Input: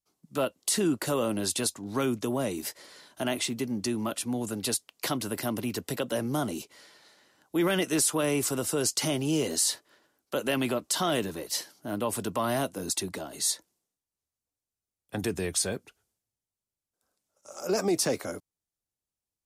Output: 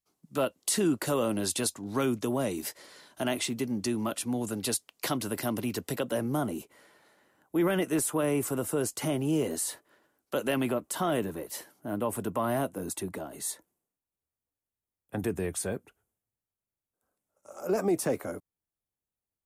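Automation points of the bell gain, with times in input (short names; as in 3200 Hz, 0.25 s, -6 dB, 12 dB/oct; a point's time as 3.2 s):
bell 4800 Hz 1.5 oct
5.86 s -2.5 dB
6.54 s -14 dB
9.68 s -14 dB
10.39 s -4 dB
10.78 s -14.5 dB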